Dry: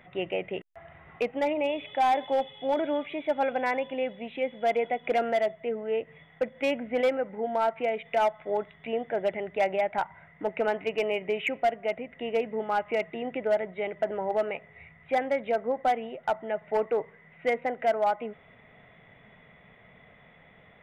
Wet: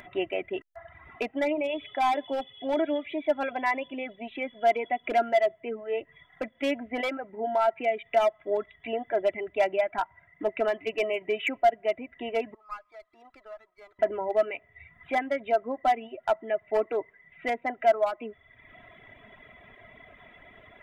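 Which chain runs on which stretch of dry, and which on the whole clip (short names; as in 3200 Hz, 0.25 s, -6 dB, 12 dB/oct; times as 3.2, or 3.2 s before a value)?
12.54–13.99 band-pass 1200 Hz, Q 9.4 + running maximum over 5 samples
whole clip: reverb removal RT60 1 s; upward compressor, threshold -46 dBFS; comb 3 ms, depth 65%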